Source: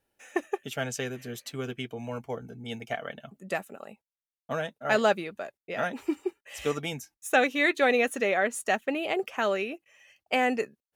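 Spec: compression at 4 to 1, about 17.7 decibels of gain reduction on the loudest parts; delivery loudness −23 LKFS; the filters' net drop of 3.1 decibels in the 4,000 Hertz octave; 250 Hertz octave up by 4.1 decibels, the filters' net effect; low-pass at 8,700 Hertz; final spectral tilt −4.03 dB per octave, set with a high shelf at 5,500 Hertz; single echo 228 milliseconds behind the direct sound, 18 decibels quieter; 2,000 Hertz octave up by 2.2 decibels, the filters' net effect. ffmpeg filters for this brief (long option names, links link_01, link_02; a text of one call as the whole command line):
ffmpeg -i in.wav -af "lowpass=8700,equalizer=frequency=250:width_type=o:gain=5,equalizer=frequency=2000:width_type=o:gain=4.5,equalizer=frequency=4000:width_type=o:gain=-3.5,highshelf=frequency=5500:gain=-8.5,acompressor=threshold=-39dB:ratio=4,aecho=1:1:228:0.126,volume=18.5dB" out.wav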